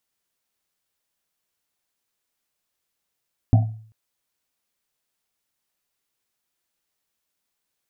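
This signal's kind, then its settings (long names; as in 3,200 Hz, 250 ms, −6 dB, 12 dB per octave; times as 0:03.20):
drum after Risset length 0.39 s, pitch 110 Hz, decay 0.54 s, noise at 710 Hz, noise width 120 Hz, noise 15%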